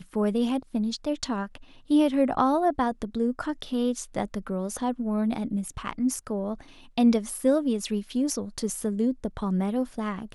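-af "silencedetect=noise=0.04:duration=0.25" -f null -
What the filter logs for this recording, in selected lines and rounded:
silence_start: 1.55
silence_end: 1.91 | silence_duration: 0.35
silence_start: 6.54
silence_end: 6.98 | silence_duration: 0.44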